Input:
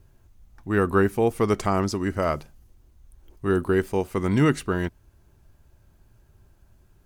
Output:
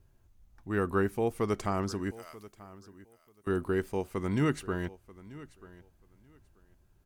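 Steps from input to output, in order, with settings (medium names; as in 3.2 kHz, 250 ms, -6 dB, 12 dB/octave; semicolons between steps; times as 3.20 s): 2.11–3.47 s: differentiator; feedback delay 936 ms, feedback 18%, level -19 dB; trim -8 dB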